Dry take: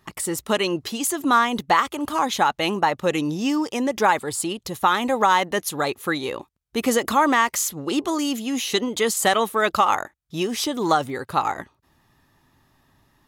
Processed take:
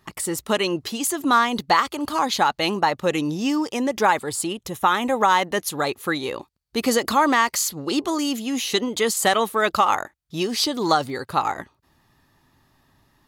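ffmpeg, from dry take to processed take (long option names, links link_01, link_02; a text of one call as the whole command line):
ffmpeg -i in.wav -af "asetnsamples=nb_out_samples=441:pad=0,asendcmd='1.31 equalizer g 10.5;2.94 equalizer g 2.5;4.47 equalizer g -8.5;5.28 equalizer g 2.5;6.36 equalizer g 10.5;8.02 equalizer g 3.5;10.4 equalizer g 13.5;11.24 equalizer g 3.5',equalizer=frequency=4500:width_type=o:width=0.23:gain=2" out.wav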